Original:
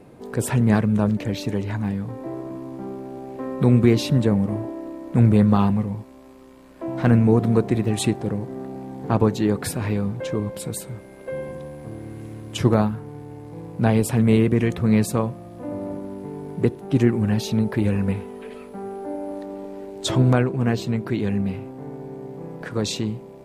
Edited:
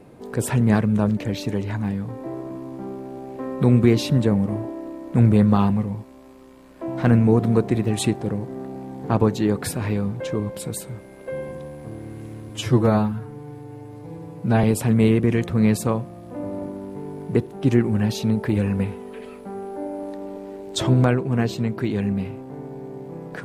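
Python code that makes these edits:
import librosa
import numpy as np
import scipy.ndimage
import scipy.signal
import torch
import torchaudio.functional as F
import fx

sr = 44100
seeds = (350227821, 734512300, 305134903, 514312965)

y = fx.edit(x, sr, fx.stretch_span(start_s=12.49, length_s=1.43, factor=1.5), tone=tone)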